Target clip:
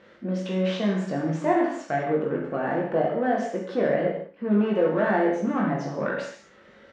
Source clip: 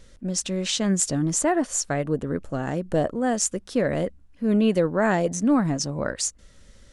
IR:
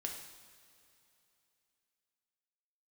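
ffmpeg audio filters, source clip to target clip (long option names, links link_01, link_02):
-filter_complex "[0:a]asplit=2[link_01][link_02];[link_02]acompressor=threshold=-34dB:ratio=6,volume=-0.5dB[link_03];[link_01][link_03]amix=inputs=2:normalize=0,asoftclip=type=hard:threshold=-15dB,asplit=2[link_04][link_05];[link_05]highpass=frequency=720:poles=1,volume=11dB,asoftclip=type=tanh:threshold=-15dB[link_06];[link_04][link_06]amix=inputs=2:normalize=0,lowpass=frequency=1600:poles=1,volume=-6dB,highpass=190,lowpass=2500,aecho=1:1:20|43|69.45|99.87|134.8:0.631|0.398|0.251|0.158|0.1[link_07];[1:a]atrim=start_sample=2205,afade=type=out:start_time=0.25:duration=0.01,atrim=end_sample=11466[link_08];[link_07][link_08]afir=irnorm=-1:irlink=0"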